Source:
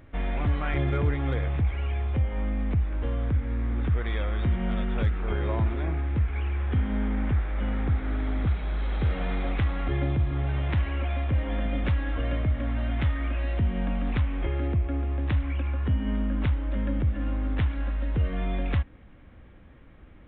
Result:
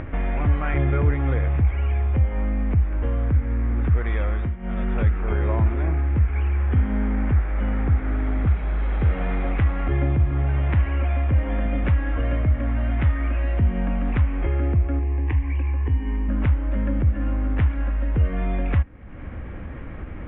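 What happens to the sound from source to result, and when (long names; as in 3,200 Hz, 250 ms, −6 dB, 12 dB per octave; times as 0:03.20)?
0:04.31–0:04.87: duck −15 dB, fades 0.25 s
0:14.99–0:16.29: phaser with its sweep stopped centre 910 Hz, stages 8
whole clip: low-pass filter 2,600 Hz 24 dB per octave; parametric band 75 Hz +3 dB 0.77 octaves; upward compression, threshold −24 dBFS; level +3.5 dB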